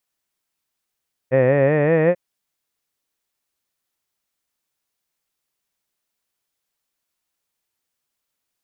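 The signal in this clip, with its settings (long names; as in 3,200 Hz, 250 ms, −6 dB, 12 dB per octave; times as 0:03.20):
vowel by formant synthesis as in head, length 0.84 s, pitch 125 Hz, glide +5.5 semitones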